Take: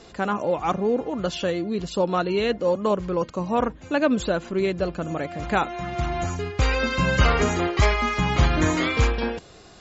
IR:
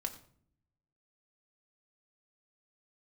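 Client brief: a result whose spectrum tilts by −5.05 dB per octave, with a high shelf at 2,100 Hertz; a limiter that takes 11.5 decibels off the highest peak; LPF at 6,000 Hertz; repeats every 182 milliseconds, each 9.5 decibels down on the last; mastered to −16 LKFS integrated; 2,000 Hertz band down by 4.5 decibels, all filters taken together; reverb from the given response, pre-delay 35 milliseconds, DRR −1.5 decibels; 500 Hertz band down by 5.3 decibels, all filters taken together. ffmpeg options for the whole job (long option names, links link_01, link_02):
-filter_complex "[0:a]lowpass=6000,equalizer=frequency=500:width_type=o:gain=-6.5,equalizer=frequency=2000:width_type=o:gain=-8.5,highshelf=frequency=2100:gain=5,alimiter=limit=-17.5dB:level=0:latency=1,aecho=1:1:182|364|546|728:0.335|0.111|0.0365|0.012,asplit=2[link_01][link_02];[1:a]atrim=start_sample=2205,adelay=35[link_03];[link_02][link_03]afir=irnorm=-1:irlink=0,volume=1.5dB[link_04];[link_01][link_04]amix=inputs=2:normalize=0,volume=7.5dB"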